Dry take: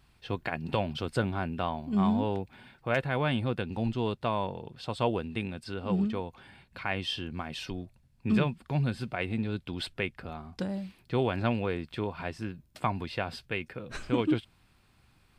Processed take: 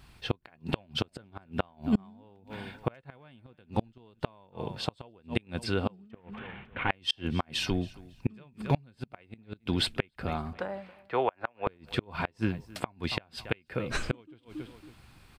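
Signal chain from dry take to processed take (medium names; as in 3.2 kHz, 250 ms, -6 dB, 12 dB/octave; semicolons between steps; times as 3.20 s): 6.11–6.90 s: CVSD coder 16 kbps; 10.53–11.67 s: three-band isolator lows -22 dB, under 500 Hz, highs -21 dB, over 2.3 kHz; on a send: feedback delay 276 ms, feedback 23%, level -21.5 dB; on the sum: inverted gate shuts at -22 dBFS, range -34 dB; trim +8 dB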